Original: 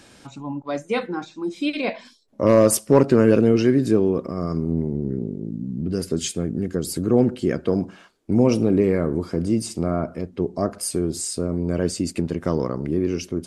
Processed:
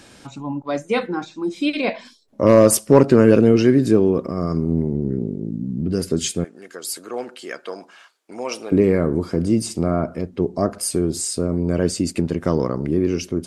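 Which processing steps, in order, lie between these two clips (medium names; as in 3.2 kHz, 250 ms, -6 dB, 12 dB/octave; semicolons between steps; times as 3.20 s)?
6.44–8.72 s: high-pass 900 Hz 12 dB/octave; trim +3 dB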